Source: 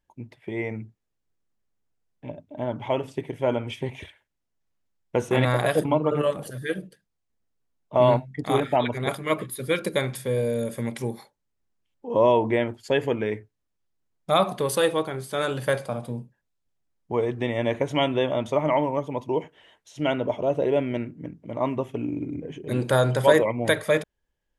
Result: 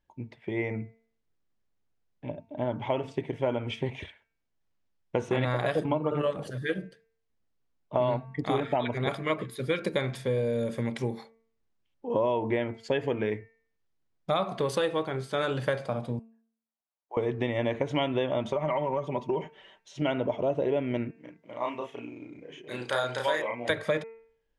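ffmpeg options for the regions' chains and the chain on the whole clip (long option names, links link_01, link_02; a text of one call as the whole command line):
ffmpeg -i in.wav -filter_complex "[0:a]asettb=1/sr,asplit=3[link_01][link_02][link_03];[link_01]atrim=end=16.194[link_04];[link_02]atrim=start=16.19:end=17.17,asetpts=PTS-STARTPTS,afade=type=in:duration=0.004:curve=qsin,afade=type=out:start_time=0.976:duration=0.004:curve=qsin,highpass=frequency=680:width=0.5412,highpass=frequency=680:width=1.3066,equalizer=frequency=2900:width=0.44:gain=-15[link_05];[link_03]atrim=start=17.166[link_06];[link_04][link_05]acrossfade=duration=0.004:curve1=hsin:curve2=qsin[link_07];[link_07][link_06]acrossfade=duration=0.004:curve1=qsin:curve2=hsin,asettb=1/sr,asplit=3[link_08][link_09][link_10];[link_08]atrim=end=18.454[link_11];[link_09]atrim=start=18.45:end=20.02,asetpts=PTS-STARTPTS,afade=type=in:duration=0.004:curve=qsin,afade=type=out:start_time=1.566:duration=0.004:curve=qsin,aecho=1:1:5.2:0.59,atrim=end_sample=69237,acompressor=threshold=-22dB:ratio=6:attack=3.2:release=140:knee=1:detection=peak[link_12];[link_10]atrim=start=20.016[link_13];[link_11][link_12]acrossfade=duration=0.004:curve1=hsin:curve2=qsin[link_14];[link_14][link_13]acrossfade=duration=0.004:curve1=qsin:curve2=hsin,asettb=1/sr,asplit=3[link_15][link_16][link_17];[link_15]atrim=end=21.114[link_18];[link_16]atrim=start=21.11:end=23.7,asetpts=PTS-STARTPTS,afade=type=in:duration=0.004:curve=qsin,afade=type=out:start_time=2.586:duration=0.004:curve=qsin,highpass=frequency=1400:poles=1,asplit=2[link_19][link_20];[link_20]adelay=33,volume=-2dB[link_21];[link_19][link_21]amix=inputs=2:normalize=0,atrim=end_sample=114219[link_22];[link_17]atrim=start=23.696[link_23];[link_18][link_22]acrossfade=duration=0.004:curve1=hsin:curve2=qsin[link_24];[link_24][link_23]acrossfade=duration=0.004:curve1=qsin:curve2=hsin,lowpass=5400,bandreject=frequency=225.9:width_type=h:width=4,bandreject=frequency=451.8:width_type=h:width=4,bandreject=frequency=677.7:width_type=h:width=4,bandreject=frequency=903.6:width_type=h:width=4,bandreject=frequency=1129.5:width_type=h:width=4,bandreject=frequency=1355.4:width_type=h:width=4,bandreject=frequency=1581.3:width_type=h:width=4,bandreject=frequency=1807.2:width_type=h:width=4,bandreject=frequency=2033.1:width_type=h:width=4,bandreject=frequency=2259:width_type=h:width=4,bandreject=frequency=2484.9:width_type=h:width=4,bandreject=frequency=2710.8:width_type=h:width=4,acompressor=threshold=-24dB:ratio=4" out.wav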